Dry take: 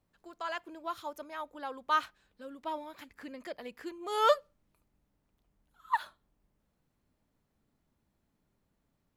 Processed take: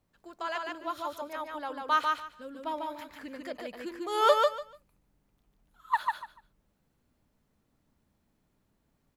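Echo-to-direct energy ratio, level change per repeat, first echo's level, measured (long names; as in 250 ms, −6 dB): −3.0 dB, −14.5 dB, −3.0 dB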